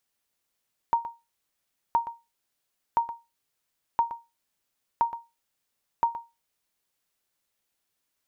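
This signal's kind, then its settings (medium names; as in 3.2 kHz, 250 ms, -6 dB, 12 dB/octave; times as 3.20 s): sonar ping 931 Hz, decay 0.24 s, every 1.02 s, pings 6, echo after 0.12 s, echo -13 dB -14.5 dBFS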